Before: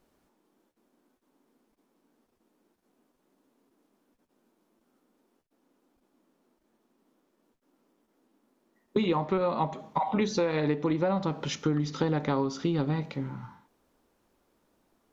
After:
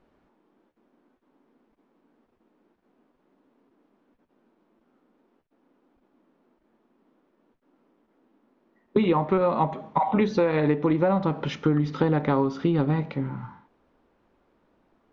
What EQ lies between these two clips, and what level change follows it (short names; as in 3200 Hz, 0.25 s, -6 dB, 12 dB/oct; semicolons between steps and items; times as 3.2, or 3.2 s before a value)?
LPF 2600 Hz 12 dB/oct; +5.0 dB